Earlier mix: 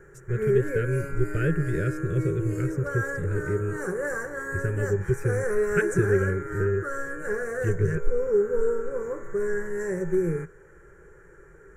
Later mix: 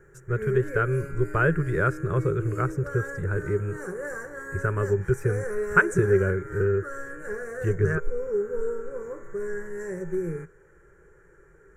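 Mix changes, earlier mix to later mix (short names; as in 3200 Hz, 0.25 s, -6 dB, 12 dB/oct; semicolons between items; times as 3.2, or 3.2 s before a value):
speech: remove Butterworth band-stop 940 Hz, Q 0.59; background -4.5 dB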